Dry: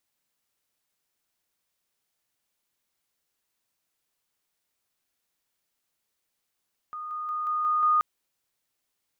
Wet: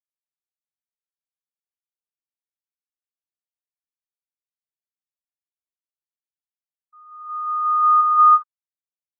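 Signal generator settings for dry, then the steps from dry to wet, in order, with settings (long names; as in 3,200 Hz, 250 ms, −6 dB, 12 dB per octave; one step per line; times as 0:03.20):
level staircase 1,230 Hz −33.5 dBFS, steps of 3 dB, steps 6, 0.18 s 0.00 s
reverb whose tail is shaped and stops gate 430 ms rising, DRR −6 dB
every bin expanded away from the loudest bin 1.5 to 1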